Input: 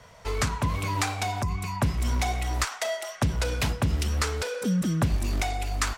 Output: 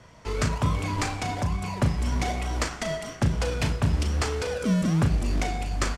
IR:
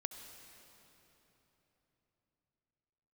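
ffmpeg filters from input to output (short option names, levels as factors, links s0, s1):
-filter_complex "[0:a]highpass=52,bandreject=f=3800:w=15,asplit=2[s0][s1];[s1]acrusher=samples=37:mix=1:aa=0.000001:lfo=1:lforange=37:lforate=1.1,volume=0.668[s2];[s0][s2]amix=inputs=2:normalize=0,lowpass=9000,asplit=2[s3][s4];[s4]adelay=37,volume=0.376[s5];[s3][s5]amix=inputs=2:normalize=0,asplit=2[s6][s7];[1:a]atrim=start_sample=2205[s8];[s7][s8]afir=irnorm=-1:irlink=0,volume=0.596[s9];[s6][s9]amix=inputs=2:normalize=0,volume=0.531"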